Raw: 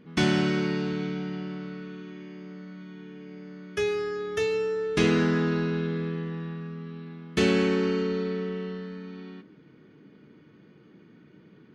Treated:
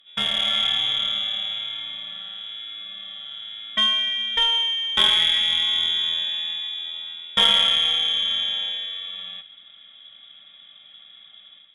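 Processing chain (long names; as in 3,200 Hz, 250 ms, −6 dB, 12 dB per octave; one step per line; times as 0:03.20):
voice inversion scrambler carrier 3,600 Hz
harmonic generator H 3 −20 dB, 6 −38 dB, 7 −41 dB, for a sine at −8.5 dBFS
automatic gain control gain up to 10 dB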